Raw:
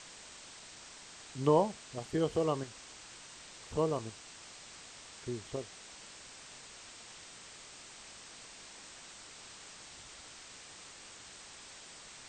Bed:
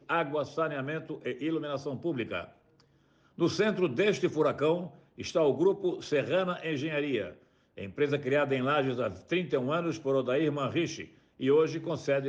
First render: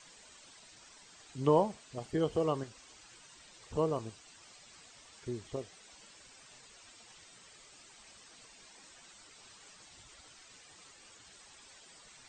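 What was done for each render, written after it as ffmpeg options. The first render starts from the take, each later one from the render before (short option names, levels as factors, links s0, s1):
-af "afftdn=nr=10:nf=-52"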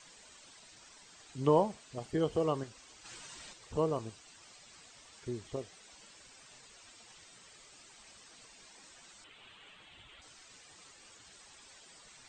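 -filter_complex "[0:a]asplit=3[s0][s1][s2];[s0]afade=t=out:st=3.04:d=0.02[s3];[s1]acontrast=79,afade=t=in:st=3.04:d=0.02,afade=t=out:st=3.52:d=0.02[s4];[s2]afade=t=in:st=3.52:d=0.02[s5];[s3][s4][s5]amix=inputs=3:normalize=0,asettb=1/sr,asplit=3[s6][s7][s8];[s6]atrim=end=9.244[s9];[s7]atrim=start=9.24:end=10.22,asetpts=PTS-STARTPTS,afade=t=in:d=0.004:c=qsin,afade=t=out:st=0.976:d=0.004:c=qsin,highshelf=f=4100:t=q:w=3:g=-9.5[s10];[s8]atrim=start=10.216[s11];[s9][s10]acrossfade=d=0.004:c1=hsin:c2=qsin[s12];[s12][s11]acrossfade=d=0.004:c1=qsin:c2=hsin"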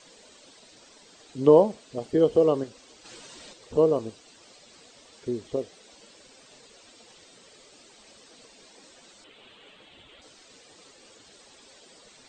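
-af "equalizer=f=250:t=o:w=1:g=8,equalizer=f=500:t=o:w=1:g=11,equalizer=f=4000:t=o:w=1:g=5"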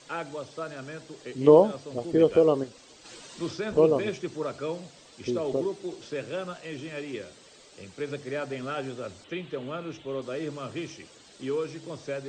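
-filter_complex "[1:a]volume=0.531[s0];[0:a][s0]amix=inputs=2:normalize=0"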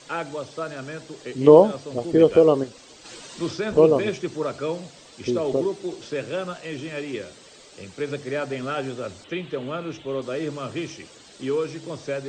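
-af "volume=1.78,alimiter=limit=0.891:level=0:latency=1"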